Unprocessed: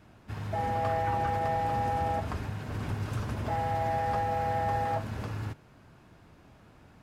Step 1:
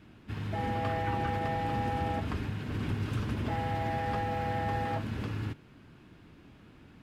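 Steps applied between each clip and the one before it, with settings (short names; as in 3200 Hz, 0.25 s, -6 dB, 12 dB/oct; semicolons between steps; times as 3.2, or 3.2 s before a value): EQ curve 110 Hz 0 dB, 300 Hz +5 dB, 450 Hz 0 dB, 640 Hz -6 dB, 3100 Hz +4 dB, 6100 Hz -4 dB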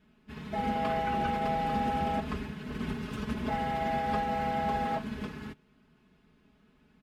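comb 4.7 ms, depth 92%; upward expander 1.5:1, over -50 dBFS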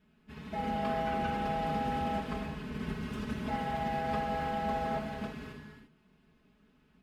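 non-linear reverb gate 0.37 s flat, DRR 2.5 dB; gain -4 dB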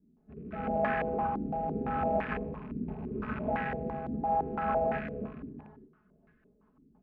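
rattling part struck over -45 dBFS, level -30 dBFS; rotary speaker horn 0.8 Hz, later 7 Hz, at 5.77; stepped low-pass 5.9 Hz 300–1700 Hz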